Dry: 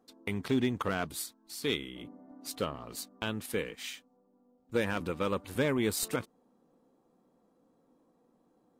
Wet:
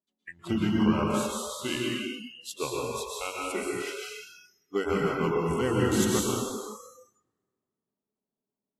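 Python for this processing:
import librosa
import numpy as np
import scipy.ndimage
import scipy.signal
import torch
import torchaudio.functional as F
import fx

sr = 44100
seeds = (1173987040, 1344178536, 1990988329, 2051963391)

y = fx.pitch_heads(x, sr, semitones=-3.0)
y = fx.rev_plate(y, sr, seeds[0], rt60_s=2.4, hf_ratio=0.8, predelay_ms=105, drr_db=-4.0)
y = fx.noise_reduce_blind(y, sr, reduce_db=28)
y = y * 10.0 ** (1.5 / 20.0)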